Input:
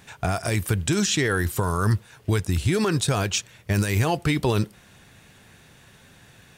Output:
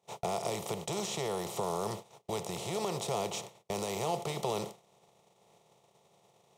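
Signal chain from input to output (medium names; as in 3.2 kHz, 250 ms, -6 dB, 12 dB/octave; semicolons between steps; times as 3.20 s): spectral levelling over time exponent 0.4; high-pass 160 Hz 24 dB/octave; bass shelf 390 Hz -4.5 dB; gate -26 dBFS, range -34 dB; static phaser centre 660 Hz, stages 4; companded quantiser 8-bit; treble shelf 2.1 kHz -11 dB; trim -7 dB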